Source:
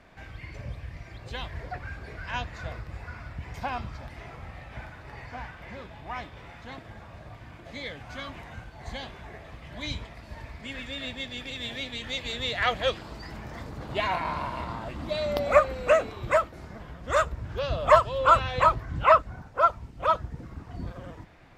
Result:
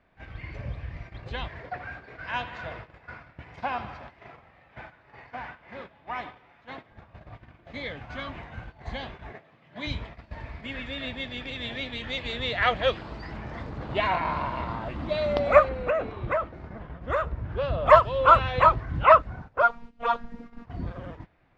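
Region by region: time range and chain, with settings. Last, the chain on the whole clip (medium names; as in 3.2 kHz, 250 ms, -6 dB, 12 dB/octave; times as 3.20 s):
1.48–6.92 s: high-pass 250 Hz 6 dB/octave + bucket-brigade echo 80 ms, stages 2048, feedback 73%, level -13 dB
9.32–9.87 s: high-pass 130 Hz 24 dB/octave + companded quantiser 8-bit
15.69–17.86 s: treble shelf 3.5 kHz -11 dB + compression 10:1, threshold -23 dBFS
19.62–20.65 s: treble shelf 4.5 kHz +5 dB + robot voice 234 Hz
whole clip: low-pass 3.4 kHz 12 dB/octave; gate -43 dBFS, range -13 dB; trim +2.5 dB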